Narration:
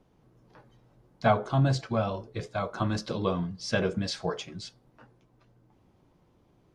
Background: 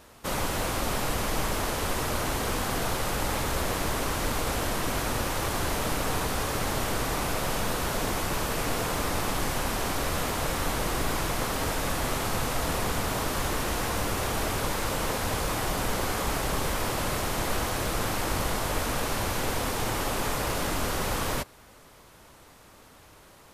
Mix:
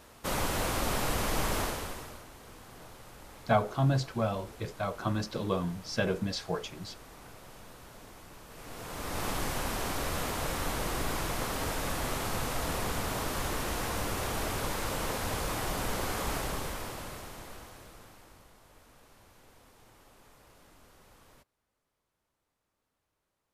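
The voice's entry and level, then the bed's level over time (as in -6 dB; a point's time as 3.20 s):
2.25 s, -2.5 dB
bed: 1.61 s -2 dB
2.28 s -22 dB
8.45 s -22 dB
9.25 s -4.5 dB
16.37 s -4.5 dB
18.52 s -30 dB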